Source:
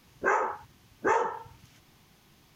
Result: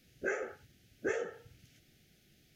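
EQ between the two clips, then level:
Butterworth band-reject 1,000 Hz, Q 1.1
−5.5 dB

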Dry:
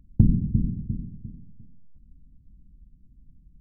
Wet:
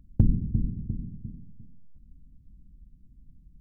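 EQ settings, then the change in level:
dynamic equaliser 180 Hz, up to −6 dB, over −32 dBFS, Q 0.73
0.0 dB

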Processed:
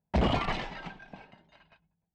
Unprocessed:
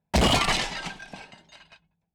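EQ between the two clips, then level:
head-to-tape spacing loss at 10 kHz 25 dB
high-shelf EQ 5,500 Hz −7 dB
−3.5 dB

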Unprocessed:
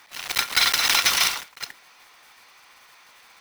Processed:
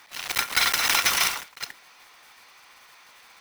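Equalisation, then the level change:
dynamic equaliser 4,100 Hz, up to −5 dB, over −32 dBFS, Q 1.3
0.0 dB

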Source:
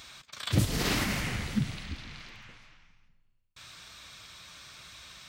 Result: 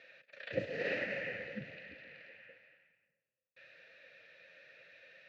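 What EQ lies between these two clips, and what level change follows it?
formant filter e
high-frequency loss of the air 180 metres
loudspeaker in its box 110–7,200 Hz, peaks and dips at 250 Hz −4 dB, 370 Hz −5 dB, 790 Hz −4 dB, 3,300 Hz −9 dB, 5,200 Hz −3 dB
+9.5 dB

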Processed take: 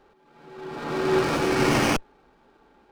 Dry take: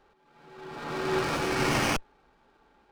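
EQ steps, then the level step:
parametric band 310 Hz +5 dB 2 octaves
+2.5 dB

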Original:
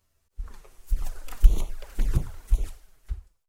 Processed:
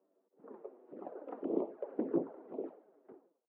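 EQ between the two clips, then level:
high-pass filter 270 Hz 24 dB per octave
flat-topped band-pass 360 Hz, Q 0.9
high-frequency loss of the air 350 metres
+11.5 dB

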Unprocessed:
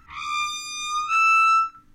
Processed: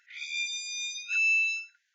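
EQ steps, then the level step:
linear-phase brick-wall band-pass 1,400–7,300 Hz
−3.0 dB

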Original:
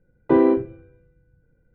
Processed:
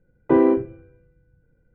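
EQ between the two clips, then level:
low-pass filter 3,200 Hz 24 dB per octave
0.0 dB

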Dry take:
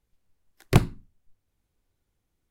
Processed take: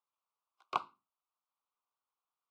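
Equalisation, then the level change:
four-pole ladder band-pass 1,300 Hz, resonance 55%
Butterworth band-reject 1,800 Hz, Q 1.4
+6.5 dB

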